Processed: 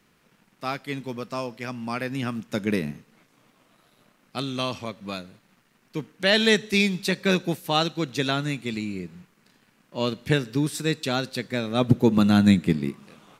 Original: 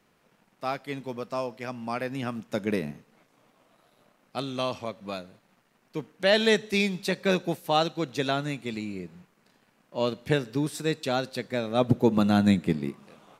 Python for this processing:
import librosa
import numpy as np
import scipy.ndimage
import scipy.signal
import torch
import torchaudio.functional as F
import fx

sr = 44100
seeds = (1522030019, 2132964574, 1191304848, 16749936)

y = fx.peak_eq(x, sr, hz=660.0, db=-7.0, octaves=1.4)
y = F.gain(torch.from_numpy(y), 5.0).numpy()